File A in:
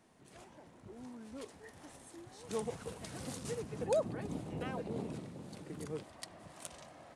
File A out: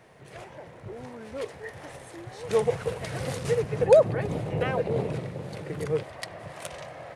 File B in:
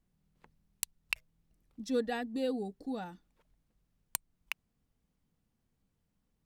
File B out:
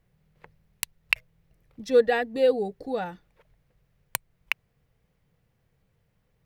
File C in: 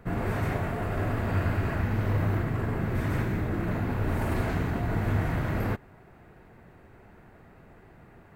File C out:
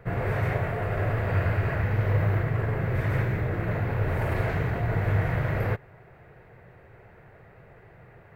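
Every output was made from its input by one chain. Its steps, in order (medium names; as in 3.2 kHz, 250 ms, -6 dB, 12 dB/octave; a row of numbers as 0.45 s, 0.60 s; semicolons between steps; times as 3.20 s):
ten-band graphic EQ 125 Hz +9 dB, 250 Hz -9 dB, 500 Hz +9 dB, 2 kHz +7 dB, 8 kHz -5 dB; normalise loudness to -27 LUFS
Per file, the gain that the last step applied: +8.5 dB, +6.5 dB, -2.5 dB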